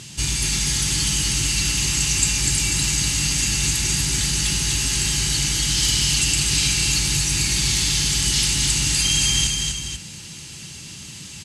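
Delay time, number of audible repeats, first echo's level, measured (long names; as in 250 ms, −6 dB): 246 ms, 2, −4.0 dB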